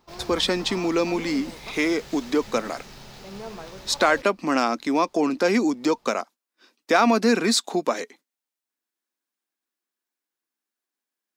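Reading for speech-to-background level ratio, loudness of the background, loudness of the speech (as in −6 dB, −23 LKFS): 17.0 dB, −40.0 LKFS, −23.0 LKFS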